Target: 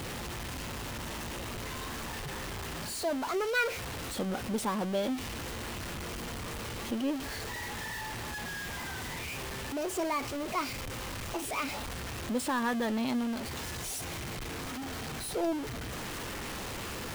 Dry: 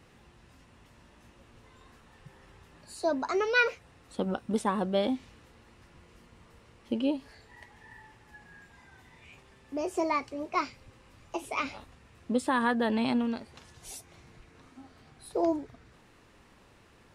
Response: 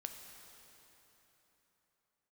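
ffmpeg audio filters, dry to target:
-af "aeval=exprs='val(0)+0.5*0.0473*sgn(val(0))':c=same,aeval=exprs='val(0)+0.00224*sin(2*PI*3100*n/s)':c=same,volume=-6.5dB"

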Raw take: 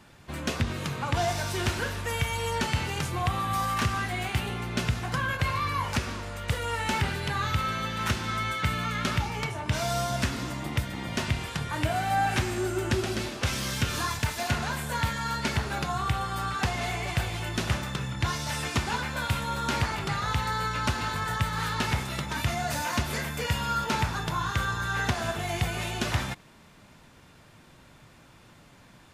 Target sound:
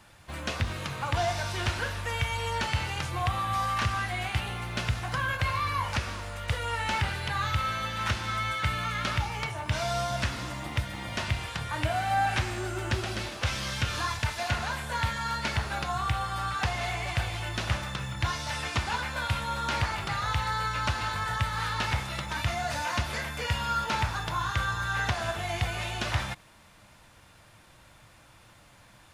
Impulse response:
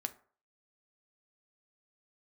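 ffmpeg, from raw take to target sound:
-filter_complex "[0:a]acrusher=bits=9:mode=log:mix=0:aa=0.000001,equalizer=f=160:t=o:w=0.33:g=-9,equalizer=f=250:t=o:w=0.33:g=-10,equalizer=f=400:t=o:w=0.33:g=-9,equalizer=f=10k:t=o:w=0.33:g=5,acrossover=split=6200[a][b];[b]acompressor=threshold=-51dB:ratio=4:attack=1:release=60[c];[a][c]amix=inputs=2:normalize=0"

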